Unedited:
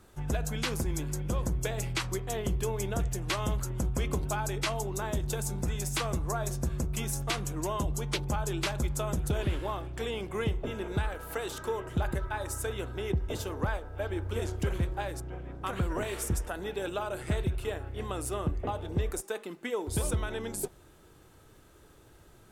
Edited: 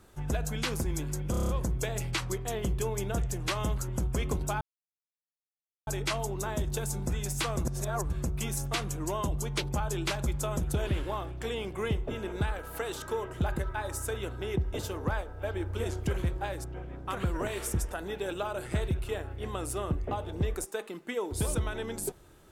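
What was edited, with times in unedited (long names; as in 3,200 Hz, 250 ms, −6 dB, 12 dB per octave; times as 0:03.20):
0:01.31: stutter 0.03 s, 7 plays
0:04.43: splice in silence 1.26 s
0:06.21–0:06.66: reverse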